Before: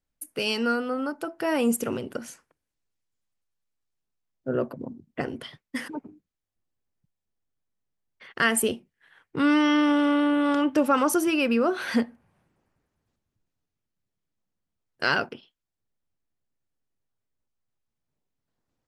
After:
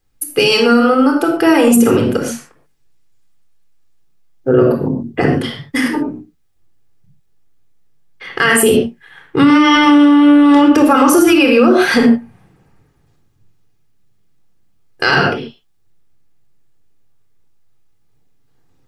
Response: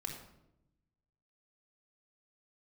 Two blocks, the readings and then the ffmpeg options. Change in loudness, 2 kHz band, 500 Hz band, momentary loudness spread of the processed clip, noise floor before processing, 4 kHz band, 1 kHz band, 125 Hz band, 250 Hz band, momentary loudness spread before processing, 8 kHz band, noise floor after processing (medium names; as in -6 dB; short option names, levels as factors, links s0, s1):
+13.5 dB, +12.5 dB, +14.5 dB, 13 LU, -85 dBFS, +14.0 dB, +13.5 dB, +19.5 dB, +14.5 dB, 17 LU, +12.0 dB, -55 dBFS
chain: -filter_complex "[1:a]atrim=start_sample=2205,atrim=end_sample=6615[s0];[0:a][s0]afir=irnorm=-1:irlink=0,alimiter=level_in=8.91:limit=0.891:release=50:level=0:latency=1,volume=0.891"